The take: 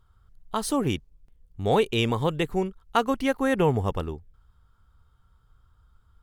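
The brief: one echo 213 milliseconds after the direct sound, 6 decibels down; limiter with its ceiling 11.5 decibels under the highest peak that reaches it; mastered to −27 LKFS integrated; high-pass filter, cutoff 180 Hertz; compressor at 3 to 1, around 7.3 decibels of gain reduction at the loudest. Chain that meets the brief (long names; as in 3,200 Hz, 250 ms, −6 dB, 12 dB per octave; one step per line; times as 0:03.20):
high-pass filter 180 Hz
downward compressor 3 to 1, threshold −27 dBFS
brickwall limiter −25 dBFS
single-tap delay 213 ms −6 dB
level +8.5 dB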